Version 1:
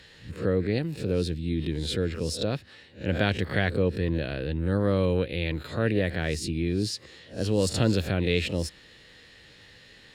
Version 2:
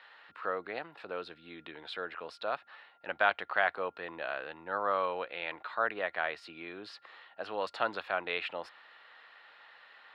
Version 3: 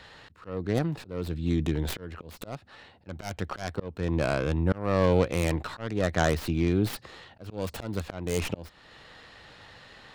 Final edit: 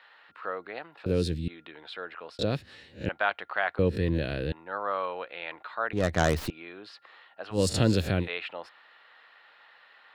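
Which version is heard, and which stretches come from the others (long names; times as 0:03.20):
2
0:01.06–0:01.48: punch in from 1
0:02.39–0:03.09: punch in from 1
0:03.79–0:04.52: punch in from 1
0:05.93–0:06.50: punch in from 3
0:07.55–0:08.24: punch in from 1, crossfade 0.10 s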